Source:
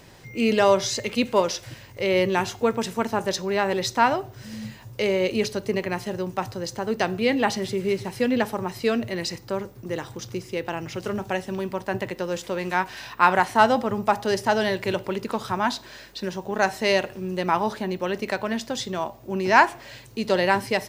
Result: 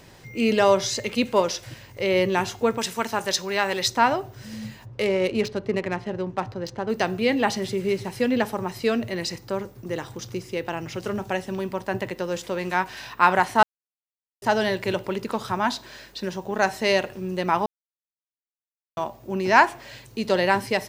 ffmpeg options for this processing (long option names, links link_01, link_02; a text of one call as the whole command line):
ffmpeg -i in.wav -filter_complex "[0:a]asettb=1/sr,asplit=3[link_01][link_02][link_03];[link_01]atrim=end=2.784[link_04];[link_02]atrim=start=2.78:end=3.88,asetpts=PTS-STARTPTS,afade=type=in:duration=0.004:curve=qsin,afade=type=out:start_time=1.096:duration=0.004:curve=qsin,tiltshelf=frequency=910:gain=-5.5[link_05];[link_03]atrim=start=3.876[link_06];[link_04][link_05]acrossfade=duration=0.004:curve1=hsin:curve2=qsin[link_07];[link_07][link_06]acrossfade=duration=0.004:curve1=qsin:curve2=hsin,asplit=3[link_08][link_09][link_10];[link_08]afade=type=out:start_time=4.84:duration=0.02[link_11];[link_09]adynamicsmooth=sensitivity=3.5:basefreq=2200,afade=type=in:start_time=4.84:duration=0.02,afade=type=out:start_time=6.88:duration=0.02[link_12];[link_10]afade=type=in:start_time=6.88:duration=0.02[link_13];[link_11][link_12][link_13]amix=inputs=3:normalize=0,asplit=5[link_14][link_15][link_16][link_17][link_18];[link_14]atrim=end=13.63,asetpts=PTS-STARTPTS,afade=type=out:start_time=13.626:duration=0.004:curve=hsin[link_19];[link_15]atrim=start=13.63:end=14.42,asetpts=PTS-STARTPTS,volume=0[link_20];[link_16]atrim=start=14.42:end=17.66,asetpts=PTS-STARTPTS,afade=type=in:duration=0.004:curve=hsin,afade=type=out:start_time=3.236:duration=0.004:curve=hsin[link_21];[link_17]atrim=start=17.66:end=18.97,asetpts=PTS-STARTPTS,volume=0[link_22];[link_18]atrim=start=18.97,asetpts=PTS-STARTPTS,afade=type=in:duration=0.004:curve=hsin[link_23];[link_19][link_20][link_21][link_22][link_23]concat=n=5:v=0:a=1" out.wav